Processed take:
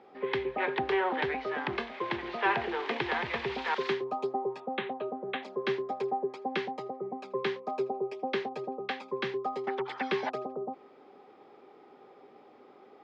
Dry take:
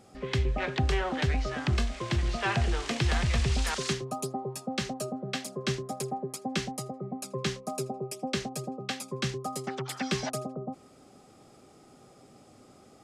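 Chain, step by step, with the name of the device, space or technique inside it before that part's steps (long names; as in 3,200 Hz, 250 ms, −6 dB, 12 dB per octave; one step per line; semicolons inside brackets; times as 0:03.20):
0:04.60–0:05.43: Chebyshev low-pass filter 3,800 Hz, order 6
phone earpiece (loudspeaker in its box 400–3,100 Hz, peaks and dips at 410 Hz +6 dB, 640 Hz −6 dB, 910 Hz +6 dB, 1,300 Hz −4 dB, 2,800 Hz −5 dB)
level +3 dB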